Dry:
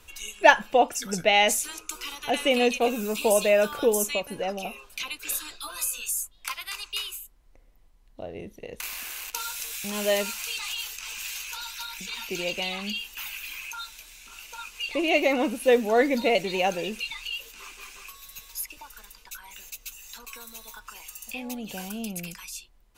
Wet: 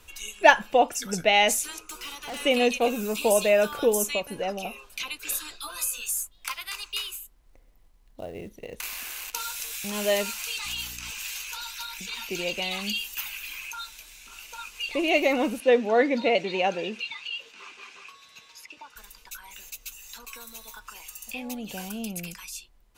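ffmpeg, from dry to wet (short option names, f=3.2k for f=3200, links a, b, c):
-filter_complex "[0:a]asplit=3[a][b][c];[a]afade=t=out:st=1.85:d=0.02[d];[b]volume=33.5dB,asoftclip=hard,volume=-33.5dB,afade=t=in:st=1.85:d=0.02,afade=t=out:st=2.4:d=0.02[e];[c]afade=t=in:st=2.4:d=0.02[f];[d][e][f]amix=inputs=3:normalize=0,asettb=1/sr,asplit=3[g][h][i];[g]atrim=end=5.904[j];[h]atrim=start=5.9:end=9.55,asetpts=PTS-STARTPTS,afade=t=in:d=0.004:c=qsin,afade=t=out:st=3.646:d=0.004:c=qsin,acrusher=bits=6:mode=log:mix=0:aa=0.000001[k];[i]atrim=start=9.546[l];[j][k]acrossfade=d=0.004:c1=hsin:c2=qsin[m];[m][l]acrossfade=d=0.004:c1=qsin:c2=hsin,asettb=1/sr,asplit=3[n][o][p];[n]atrim=end=10.654[q];[o]atrim=start=10.65:end=11.11,asetpts=PTS-STARTPTS,afade=t=in:d=0.004:c=qsin,afade=t=out:st=0.456:d=0.004:c=qsin,aeval=exprs='val(0)+0.00501*(sin(2*PI*60*n/s)+sin(2*PI*2*60*n/s)/2+sin(2*PI*3*60*n/s)/3+sin(2*PI*4*60*n/s)/4+sin(2*PI*5*60*n/s)/5)':c=same[r];[p]atrim=start=11.106[s];[q][r]acrossfade=d=0.004:c1=hsin:c2=qsin[t];[t][s]acrossfade=d=0.004:c1=qsin:c2=hsin,asettb=1/sr,asplit=3[u][v][w];[u]atrim=end=12.714[x];[v]atrim=start=12.71:end=13.21,asetpts=PTS-STARTPTS,afade=t=in:d=0.004:c=qsin,afade=t=out:st=0.496:d=0.004:c=qsin,highshelf=f=4.8k:g=9[y];[w]atrim=start=13.206[z];[x][y]acrossfade=d=0.004:c1=hsin:c2=qsin[aa];[aa][z]acrossfade=d=0.004:c1=qsin:c2=hsin,asettb=1/sr,asplit=3[ab][ac][ad];[ab]atrim=end=15.604[ae];[ac]atrim=start=15.6:end=18.96,asetpts=PTS-STARTPTS,afade=t=in:d=0.004:c=qsin,afade=t=out:st=3.356:d=0.004:c=qsin,highpass=160,lowpass=4.3k[af];[ad]atrim=start=18.956[ag];[ae][af]acrossfade=d=0.004:c1=hsin:c2=qsin[ah];[ah][ag]acrossfade=d=0.004:c1=qsin:c2=hsin"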